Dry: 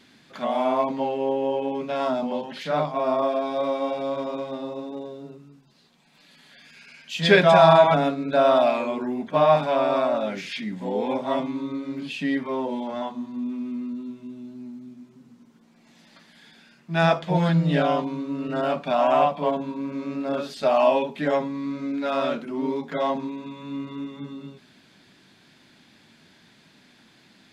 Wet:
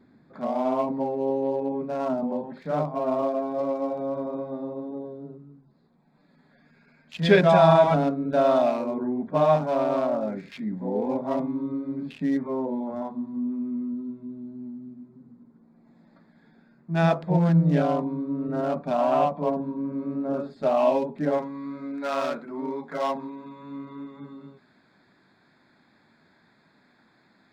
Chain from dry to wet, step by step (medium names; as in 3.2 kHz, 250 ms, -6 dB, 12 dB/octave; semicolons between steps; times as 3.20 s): local Wiener filter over 15 samples; tilt shelf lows +4 dB, about 630 Hz, from 21.37 s lows -5 dB; trim -2 dB